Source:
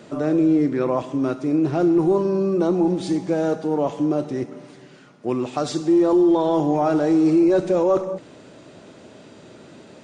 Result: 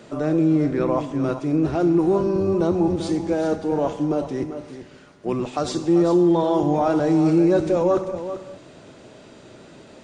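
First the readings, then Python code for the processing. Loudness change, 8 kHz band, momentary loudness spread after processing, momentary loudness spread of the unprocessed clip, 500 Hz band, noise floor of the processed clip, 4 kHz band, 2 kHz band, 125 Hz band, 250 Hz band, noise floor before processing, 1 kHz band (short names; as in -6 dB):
-0.5 dB, n/a, 11 LU, 9 LU, -0.5 dB, -47 dBFS, +0.5 dB, +0.5 dB, +3.0 dB, -1.0 dB, -46 dBFS, 0.0 dB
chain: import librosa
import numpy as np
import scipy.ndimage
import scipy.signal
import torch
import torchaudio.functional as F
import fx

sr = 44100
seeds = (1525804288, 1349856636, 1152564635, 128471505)

p1 = fx.octave_divider(x, sr, octaves=1, level_db=-4.0)
p2 = fx.low_shelf(p1, sr, hz=180.0, db=-6.0)
y = p2 + fx.echo_single(p2, sr, ms=391, db=-11.0, dry=0)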